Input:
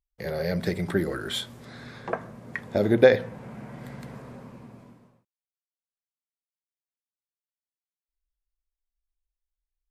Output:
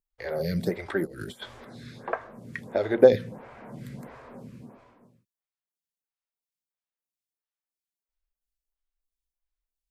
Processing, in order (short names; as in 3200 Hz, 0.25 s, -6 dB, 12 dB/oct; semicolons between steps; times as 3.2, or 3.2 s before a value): 1.05–1.65 negative-ratio compressor -36 dBFS, ratio -0.5; photocell phaser 1.5 Hz; gain +1.5 dB